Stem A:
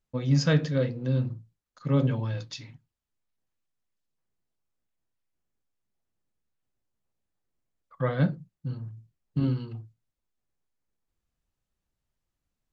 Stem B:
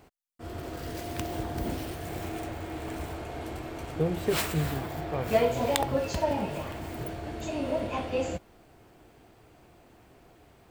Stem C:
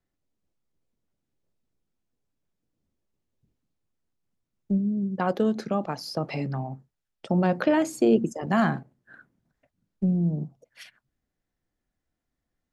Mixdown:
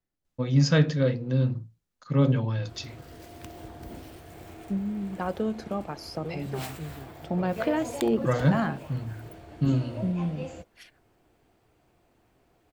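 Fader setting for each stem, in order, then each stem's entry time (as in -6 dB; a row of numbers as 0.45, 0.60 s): +2.0, -9.5, -5.0 dB; 0.25, 2.25, 0.00 s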